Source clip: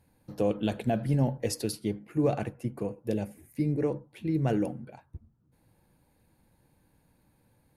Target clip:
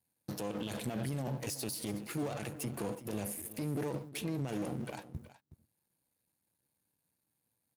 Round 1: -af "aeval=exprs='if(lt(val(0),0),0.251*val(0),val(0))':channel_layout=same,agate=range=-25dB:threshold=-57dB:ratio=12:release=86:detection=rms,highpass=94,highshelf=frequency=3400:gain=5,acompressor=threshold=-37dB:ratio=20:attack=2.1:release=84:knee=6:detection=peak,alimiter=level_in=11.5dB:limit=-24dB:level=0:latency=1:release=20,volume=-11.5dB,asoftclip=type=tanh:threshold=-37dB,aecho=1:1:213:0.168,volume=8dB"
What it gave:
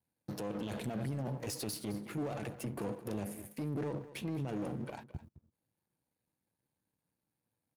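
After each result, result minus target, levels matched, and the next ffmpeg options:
soft clipping: distortion +14 dB; echo 157 ms early; 8,000 Hz band −4.0 dB
-af "aeval=exprs='if(lt(val(0),0),0.251*val(0),val(0))':channel_layout=same,agate=range=-25dB:threshold=-57dB:ratio=12:release=86:detection=rms,highpass=94,highshelf=frequency=3400:gain=5,acompressor=threshold=-37dB:ratio=20:attack=2.1:release=84:knee=6:detection=peak,alimiter=level_in=11.5dB:limit=-24dB:level=0:latency=1:release=20,volume=-11.5dB,asoftclip=type=tanh:threshold=-29dB,aecho=1:1:213:0.168,volume=8dB"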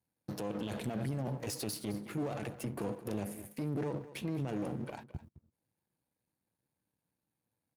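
echo 157 ms early; 8,000 Hz band −4.0 dB
-af "aeval=exprs='if(lt(val(0),0),0.251*val(0),val(0))':channel_layout=same,agate=range=-25dB:threshold=-57dB:ratio=12:release=86:detection=rms,highpass=94,highshelf=frequency=3400:gain=5,acompressor=threshold=-37dB:ratio=20:attack=2.1:release=84:knee=6:detection=peak,alimiter=level_in=11.5dB:limit=-24dB:level=0:latency=1:release=20,volume=-11.5dB,asoftclip=type=tanh:threshold=-29dB,aecho=1:1:370:0.168,volume=8dB"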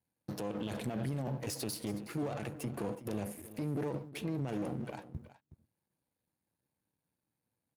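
8,000 Hz band −4.0 dB
-af "aeval=exprs='if(lt(val(0),0),0.251*val(0),val(0))':channel_layout=same,agate=range=-25dB:threshold=-57dB:ratio=12:release=86:detection=rms,highpass=94,highshelf=frequency=3400:gain=16,acompressor=threshold=-37dB:ratio=20:attack=2.1:release=84:knee=6:detection=peak,alimiter=level_in=11.5dB:limit=-24dB:level=0:latency=1:release=20,volume=-11.5dB,asoftclip=type=tanh:threshold=-29dB,aecho=1:1:370:0.168,volume=8dB"

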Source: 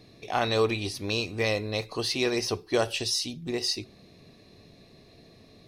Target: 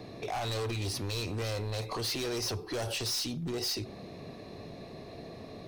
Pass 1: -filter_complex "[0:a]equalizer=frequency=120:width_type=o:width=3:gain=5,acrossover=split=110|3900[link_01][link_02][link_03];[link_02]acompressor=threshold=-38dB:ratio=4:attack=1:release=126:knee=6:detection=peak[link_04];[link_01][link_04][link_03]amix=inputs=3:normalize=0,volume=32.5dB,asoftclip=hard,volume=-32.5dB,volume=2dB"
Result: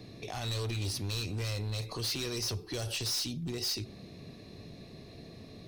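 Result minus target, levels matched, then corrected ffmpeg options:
1,000 Hz band −6.5 dB
-filter_complex "[0:a]equalizer=frequency=120:width_type=o:width=3:gain=5,acrossover=split=110|3900[link_01][link_02][link_03];[link_02]acompressor=threshold=-38dB:ratio=4:attack=1:release=126:knee=6:detection=peak,equalizer=frequency=810:width_type=o:width=2.3:gain=10.5[link_04];[link_01][link_04][link_03]amix=inputs=3:normalize=0,volume=32.5dB,asoftclip=hard,volume=-32.5dB,volume=2dB"

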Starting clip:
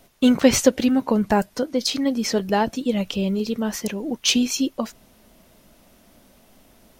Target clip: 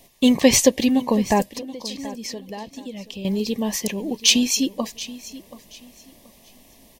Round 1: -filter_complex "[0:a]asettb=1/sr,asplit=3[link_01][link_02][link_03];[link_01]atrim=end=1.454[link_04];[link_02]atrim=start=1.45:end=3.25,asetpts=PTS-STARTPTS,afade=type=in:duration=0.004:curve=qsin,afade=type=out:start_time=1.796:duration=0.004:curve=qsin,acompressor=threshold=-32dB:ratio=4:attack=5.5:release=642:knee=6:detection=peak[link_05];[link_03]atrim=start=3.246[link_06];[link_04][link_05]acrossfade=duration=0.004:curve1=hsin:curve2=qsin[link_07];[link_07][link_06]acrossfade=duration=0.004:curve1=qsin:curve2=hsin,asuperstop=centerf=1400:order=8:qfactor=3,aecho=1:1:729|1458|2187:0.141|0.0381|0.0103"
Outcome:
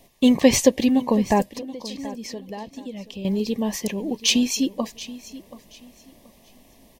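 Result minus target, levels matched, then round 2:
4,000 Hz band −2.5 dB
-filter_complex "[0:a]asettb=1/sr,asplit=3[link_01][link_02][link_03];[link_01]atrim=end=1.454[link_04];[link_02]atrim=start=1.45:end=3.25,asetpts=PTS-STARTPTS,afade=type=in:duration=0.004:curve=qsin,afade=type=out:start_time=1.796:duration=0.004:curve=qsin,acompressor=threshold=-32dB:ratio=4:attack=5.5:release=642:knee=6:detection=peak[link_05];[link_03]atrim=start=3.246[link_06];[link_04][link_05]acrossfade=duration=0.004:curve1=hsin:curve2=qsin[link_07];[link_07][link_06]acrossfade=duration=0.004:curve1=qsin:curve2=hsin,asuperstop=centerf=1400:order=8:qfactor=3,highshelf=frequency=2300:gain=5.5,aecho=1:1:729|1458|2187:0.141|0.0381|0.0103"

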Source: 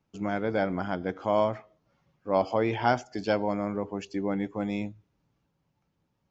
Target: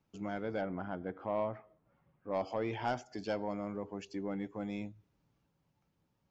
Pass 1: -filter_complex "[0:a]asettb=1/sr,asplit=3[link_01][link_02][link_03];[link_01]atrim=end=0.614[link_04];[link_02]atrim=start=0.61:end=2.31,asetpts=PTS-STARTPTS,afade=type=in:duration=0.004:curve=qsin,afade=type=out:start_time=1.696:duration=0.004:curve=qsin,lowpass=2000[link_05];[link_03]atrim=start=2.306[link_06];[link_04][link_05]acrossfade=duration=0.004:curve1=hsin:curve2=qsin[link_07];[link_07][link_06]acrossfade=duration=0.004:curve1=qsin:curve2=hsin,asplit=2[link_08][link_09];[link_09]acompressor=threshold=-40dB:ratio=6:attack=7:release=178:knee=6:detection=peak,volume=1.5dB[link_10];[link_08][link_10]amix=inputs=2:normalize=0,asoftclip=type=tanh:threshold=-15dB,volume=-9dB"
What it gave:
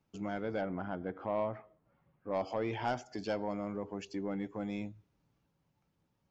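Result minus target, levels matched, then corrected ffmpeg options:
downward compressor: peak gain reduction −9 dB
-filter_complex "[0:a]asettb=1/sr,asplit=3[link_01][link_02][link_03];[link_01]atrim=end=0.614[link_04];[link_02]atrim=start=0.61:end=2.31,asetpts=PTS-STARTPTS,afade=type=in:duration=0.004:curve=qsin,afade=type=out:start_time=1.696:duration=0.004:curve=qsin,lowpass=2000[link_05];[link_03]atrim=start=2.306[link_06];[link_04][link_05]acrossfade=duration=0.004:curve1=hsin:curve2=qsin[link_07];[link_07][link_06]acrossfade=duration=0.004:curve1=qsin:curve2=hsin,asplit=2[link_08][link_09];[link_09]acompressor=threshold=-51dB:ratio=6:attack=7:release=178:knee=6:detection=peak,volume=1.5dB[link_10];[link_08][link_10]amix=inputs=2:normalize=0,asoftclip=type=tanh:threshold=-15dB,volume=-9dB"

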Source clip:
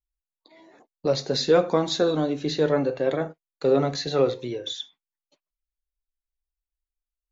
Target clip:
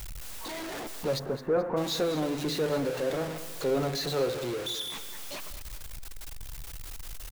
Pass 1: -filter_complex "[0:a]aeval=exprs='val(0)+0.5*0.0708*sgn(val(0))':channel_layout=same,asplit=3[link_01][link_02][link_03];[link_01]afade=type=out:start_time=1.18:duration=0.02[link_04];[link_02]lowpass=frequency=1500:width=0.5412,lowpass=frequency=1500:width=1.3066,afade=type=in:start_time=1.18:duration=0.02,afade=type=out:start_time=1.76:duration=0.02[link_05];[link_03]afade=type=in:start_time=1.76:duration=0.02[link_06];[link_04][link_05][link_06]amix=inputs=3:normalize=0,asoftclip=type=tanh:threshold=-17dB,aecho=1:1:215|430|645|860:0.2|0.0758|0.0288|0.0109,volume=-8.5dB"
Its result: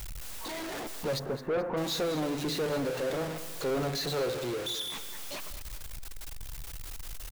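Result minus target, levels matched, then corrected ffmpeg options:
soft clipping: distortion +13 dB
-filter_complex "[0:a]aeval=exprs='val(0)+0.5*0.0708*sgn(val(0))':channel_layout=same,asplit=3[link_01][link_02][link_03];[link_01]afade=type=out:start_time=1.18:duration=0.02[link_04];[link_02]lowpass=frequency=1500:width=0.5412,lowpass=frequency=1500:width=1.3066,afade=type=in:start_time=1.18:duration=0.02,afade=type=out:start_time=1.76:duration=0.02[link_05];[link_03]afade=type=in:start_time=1.76:duration=0.02[link_06];[link_04][link_05][link_06]amix=inputs=3:normalize=0,asoftclip=type=tanh:threshold=-7.5dB,aecho=1:1:215|430|645|860:0.2|0.0758|0.0288|0.0109,volume=-8.5dB"

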